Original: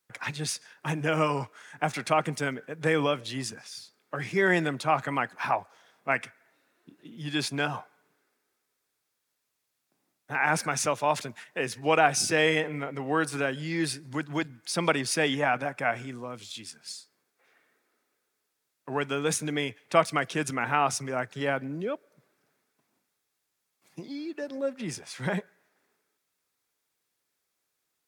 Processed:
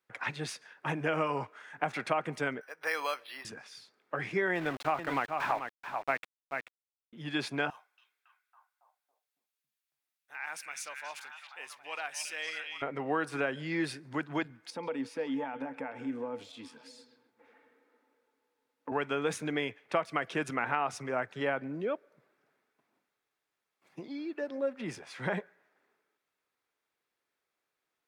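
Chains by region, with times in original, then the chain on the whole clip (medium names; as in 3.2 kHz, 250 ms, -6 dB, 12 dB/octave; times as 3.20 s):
2.61–3.45 s: high-pass 900 Hz + careless resampling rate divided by 6×, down filtered, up hold
4.55–7.13 s: small samples zeroed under -33.5 dBFS + delay 435 ms -9.5 dB
7.70–12.82 s: differentiator + repeats whose band climbs or falls 277 ms, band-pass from 3.1 kHz, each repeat -0.7 oct, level -2 dB + transformer saturation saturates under 2.7 kHz
14.70–18.92 s: compression 4:1, threshold -42 dBFS + small resonant body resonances 270/480/870 Hz, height 17 dB, ringing for 90 ms + repeats whose band climbs or falls 131 ms, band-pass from 3.5 kHz, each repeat -0.7 oct, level -11 dB
whole clip: tone controls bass -7 dB, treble -13 dB; compression, threshold -26 dBFS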